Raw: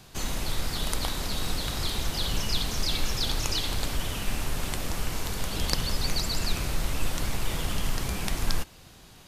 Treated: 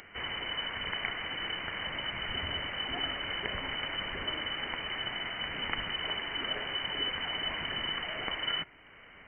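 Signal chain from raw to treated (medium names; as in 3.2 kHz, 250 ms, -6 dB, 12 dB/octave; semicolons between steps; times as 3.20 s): resonant low shelf 540 Hz -14 dB, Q 1.5; upward compressor, threshold -44 dBFS; frequency inversion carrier 3 kHz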